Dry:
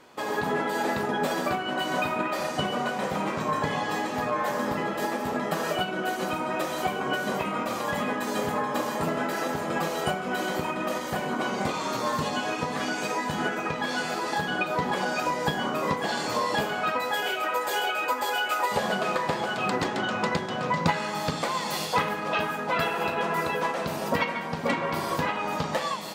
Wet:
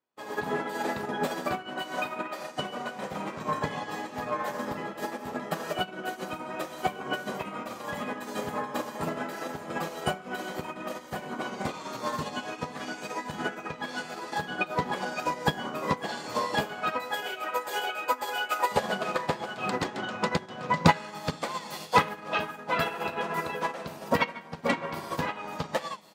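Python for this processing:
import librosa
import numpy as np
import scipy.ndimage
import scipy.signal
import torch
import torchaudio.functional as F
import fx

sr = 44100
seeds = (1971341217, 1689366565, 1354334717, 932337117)

y = fx.peak_eq(x, sr, hz=67.0, db=fx.line((1.81, -13.0), (2.95, -6.5)), octaves=2.4, at=(1.81, 2.95), fade=0.02)
y = fx.upward_expand(y, sr, threshold_db=-47.0, expansion=2.5)
y = F.gain(torch.from_numpy(y), 6.0).numpy()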